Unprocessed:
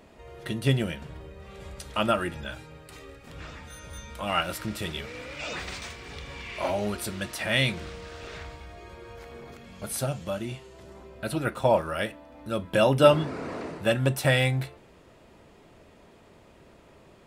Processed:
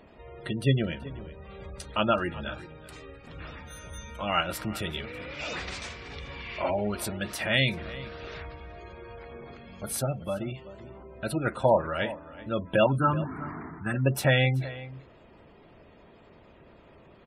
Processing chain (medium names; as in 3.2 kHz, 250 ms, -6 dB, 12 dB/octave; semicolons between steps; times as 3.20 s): 12.86–13.94 s: static phaser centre 1.3 kHz, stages 4; spectral gate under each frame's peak -25 dB strong; echo from a far wall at 65 m, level -16 dB